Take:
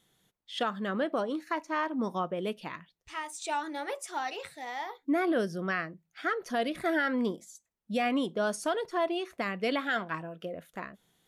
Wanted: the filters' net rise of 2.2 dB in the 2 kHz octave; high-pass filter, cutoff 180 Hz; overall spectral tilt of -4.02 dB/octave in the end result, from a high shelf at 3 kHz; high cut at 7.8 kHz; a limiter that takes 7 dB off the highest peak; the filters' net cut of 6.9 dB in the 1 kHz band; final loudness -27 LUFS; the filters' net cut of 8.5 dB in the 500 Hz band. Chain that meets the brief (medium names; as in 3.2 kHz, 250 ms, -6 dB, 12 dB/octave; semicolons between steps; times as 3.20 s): high-pass 180 Hz; low-pass 7.8 kHz; peaking EQ 500 Hz -9 dB; peaking EQ 1 kHz -8.5 dB; peaking EQ 2 kHz +7.5 dB; treble shelf 3 kHz -3.5 dB; trim +10.5 dB; peak limiter -15.5 dBFS